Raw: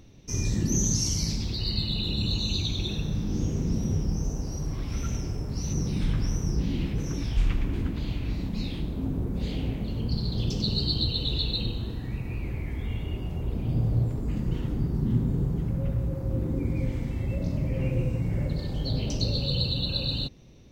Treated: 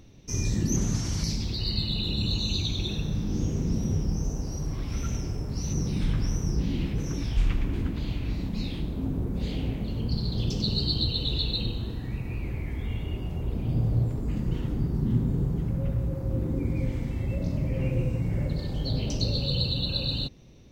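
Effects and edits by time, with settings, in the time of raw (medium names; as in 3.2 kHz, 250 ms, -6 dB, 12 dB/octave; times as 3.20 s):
0.76–1.24 s: one-bit delta coder 64 kbps, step -43 dBFS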